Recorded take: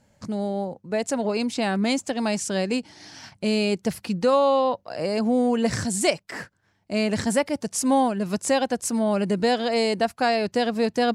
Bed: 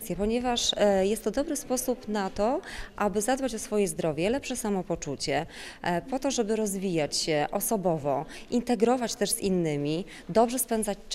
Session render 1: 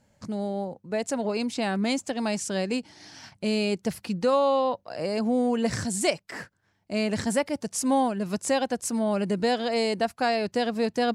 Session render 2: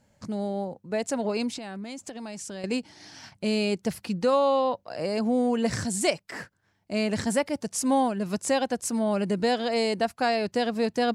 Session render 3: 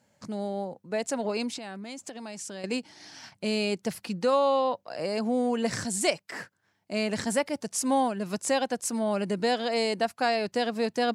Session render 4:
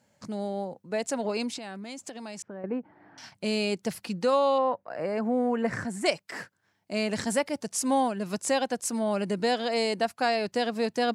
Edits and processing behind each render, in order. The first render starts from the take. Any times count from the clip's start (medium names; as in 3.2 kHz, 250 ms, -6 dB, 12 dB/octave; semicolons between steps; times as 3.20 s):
trim -3 dB
1.57–2.64 s: compression 8:1, threshold -34 dBFS
high-pass 110 Hz; bass shelf 400 Hz -4 dB
2.42–3.18 s: low-pass 1.5 kHz 24 dB/octave; 4.58–6.06 s: resonant high shelf 2.6 kHz -12 dB, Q 1.5